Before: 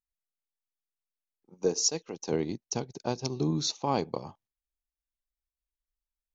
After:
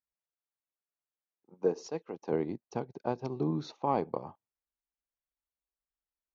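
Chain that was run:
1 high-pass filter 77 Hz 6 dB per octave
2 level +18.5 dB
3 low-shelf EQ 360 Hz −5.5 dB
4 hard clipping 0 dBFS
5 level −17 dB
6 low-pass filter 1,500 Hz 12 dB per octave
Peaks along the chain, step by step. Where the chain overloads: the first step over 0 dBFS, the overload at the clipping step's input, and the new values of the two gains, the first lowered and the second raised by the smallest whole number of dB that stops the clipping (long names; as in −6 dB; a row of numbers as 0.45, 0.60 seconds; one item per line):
−14.0, +4.5, +4.5, 0.0, −17.0, −16.5 dBFS
step 2, 4.5 dB
step 2 +13.5 dB, step 5 −12 dB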